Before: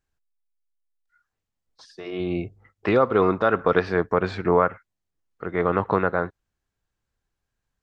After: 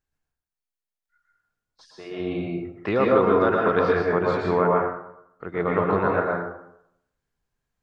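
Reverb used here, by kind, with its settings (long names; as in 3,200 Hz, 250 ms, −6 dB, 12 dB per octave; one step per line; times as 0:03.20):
dense smooth reverb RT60 0.77 s, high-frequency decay 0.55×, pre-delay 105 ms, DRR −2.5 dB
level −4 dB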